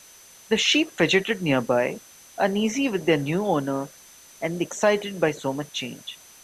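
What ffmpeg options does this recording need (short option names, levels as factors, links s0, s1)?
-af "bandreject=f=6100:w=30,afftdn=nr=19:nf=-49"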